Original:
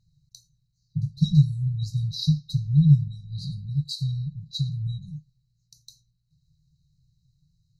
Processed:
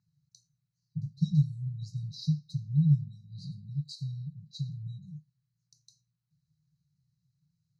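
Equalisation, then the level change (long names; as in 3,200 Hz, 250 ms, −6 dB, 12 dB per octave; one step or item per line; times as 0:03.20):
band-pass filter 200–4,900 Hz
phaser with its sweep stopped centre 1,400 Hz, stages 4
0.0 dB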